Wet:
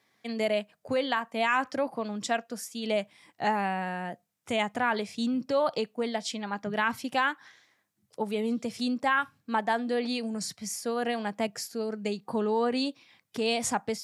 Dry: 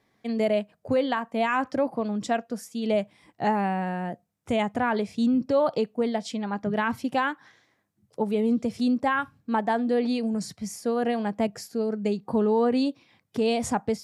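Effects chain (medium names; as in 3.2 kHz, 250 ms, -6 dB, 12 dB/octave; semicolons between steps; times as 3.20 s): high-pass 96 Hz; tilt shelf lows -5.5 dB, about 930 Hz; trim -1.5 dB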